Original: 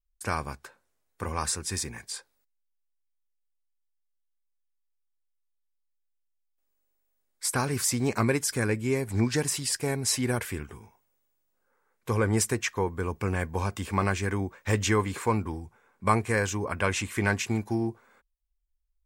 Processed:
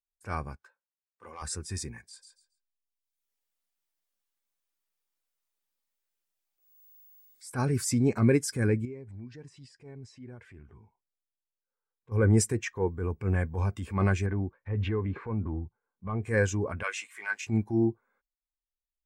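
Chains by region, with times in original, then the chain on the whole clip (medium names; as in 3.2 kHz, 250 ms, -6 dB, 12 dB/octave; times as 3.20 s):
0.56–1.42 s: median filter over 3 samples + overload inside the chain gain 22.5 dB + high-pass 610 Hz 6 dB/octave
2.04–7.51 s: feedback delay 136 ms, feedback 20%, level -7.5 dB + three bands compressed up and down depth 100%
8.85–12.12 s: compression 5:1, threshold -38 dBFS + distance through air 89 m
14.26–16.23 s: distance through air 390 m + waveshaping leveller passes 1 + compression 10:1, threshold -26 dBFS
16.83–17.47 s: companding laws mixed up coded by A + high-pass 850 Hz + doubling 19 ms -10.5 dB
whole clip: dynamic bell 1 kHz, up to -4 dB, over -45 dBFS, Q 4.3; transient shaper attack -8 dB, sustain +1 dB; spectral contrast expander 1.5:1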